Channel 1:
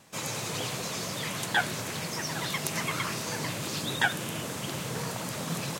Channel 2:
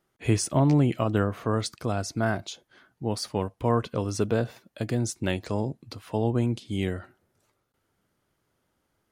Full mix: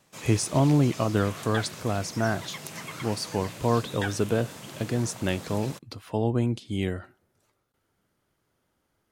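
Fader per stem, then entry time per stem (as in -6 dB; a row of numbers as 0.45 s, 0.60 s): -7.5 dB, 0.0 dB; 0.00 s, 0.00 s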